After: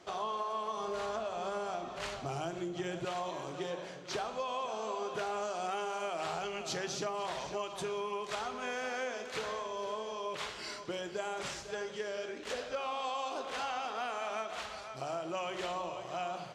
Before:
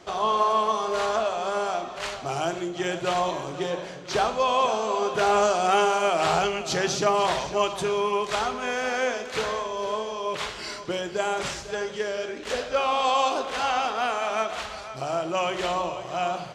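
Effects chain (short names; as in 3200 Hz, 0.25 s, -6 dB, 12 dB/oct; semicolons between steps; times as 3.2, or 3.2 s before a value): 0.77–3.05 low shelf 240 Hz +11 dB; compressor, threshold -26 dBFS, peak gain reduction 9 dB; low shelf 72 Hz -8 dB; gain -7.5 dB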